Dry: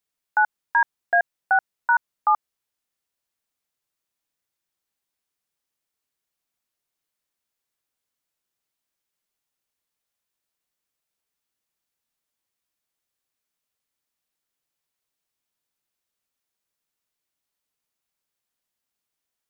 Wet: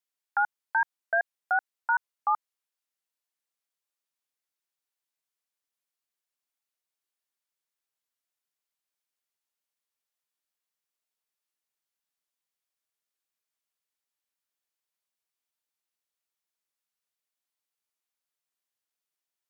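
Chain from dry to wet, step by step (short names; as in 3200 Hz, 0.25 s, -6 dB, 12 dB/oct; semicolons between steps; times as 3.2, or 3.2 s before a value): HPF 530 Hz 6 dB/oct; shaped vibrato saw up 5.4 Hz, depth 100 cents; gain -5.5 dB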